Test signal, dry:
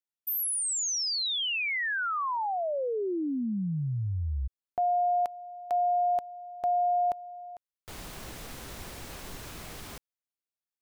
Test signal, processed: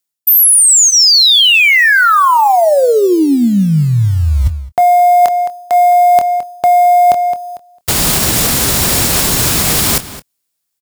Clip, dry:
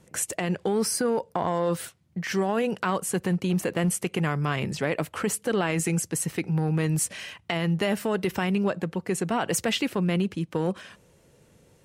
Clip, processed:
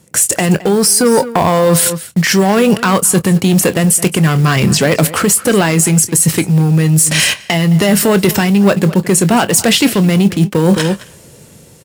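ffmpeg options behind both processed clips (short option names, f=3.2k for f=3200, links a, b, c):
-filter_complex "[0:a]asplit=2[a][b];[b]acrusher=bits=4:mode=log:mix=0:aa=0.000001,volume=-5.5dB[c];[a][c]amix=inputs=2:normalize=0,asoftclip=type=tanh:threshold=-17.5dB,highpass=f=110:p=1,bass=f=250:g=9,treble=f=4k:g=9,agate=range=-14dB:threshold=-38dB:ratio=16:release=24:detection=rms,asplit=2[d][e];[e]adelay=215.7,volume=-18dB,highshelf=f=4k:g=-4.85[f];[d][f]amix=inputs=2:normalize=0,dynaudnorm=f=170:g=9:m=3dB,asplit=2[g][h];[h]adelay=25,volume=-14dB[i];[g][i]amix=inputs=2:normalize=0,areverse,acompressor=threshold=-32dB:ratio=6:attack=37:release=650:knee=1:detection=peak,areverse,lowshelf=f=230:g=-4.5,bandreject=f=6.1k:w=20,alimiter=level_in=25.5dB:limit=-1dB:release=50:level=0:latency=1,volume=-1dB"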